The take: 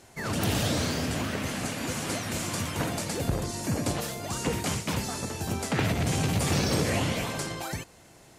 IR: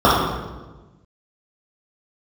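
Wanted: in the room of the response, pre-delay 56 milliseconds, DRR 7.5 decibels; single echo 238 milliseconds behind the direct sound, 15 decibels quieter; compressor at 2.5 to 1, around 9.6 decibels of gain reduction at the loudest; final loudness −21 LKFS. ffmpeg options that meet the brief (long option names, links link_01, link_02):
-filter_complex "[0:a]acompressor=threshold=-37dB:ratio=2.5,aecho=1:1:238:0.178,asplit=2[link_01][link_02];[1:a]atrim=start_sample=2205,adelay=56[link_03];[link_02][link_03]afir=irnorm=-1:irlink=0,volume=-36.5dB[link_04];[link_01][link_04]amix=inputs=2:normalize=0,volume=15dB"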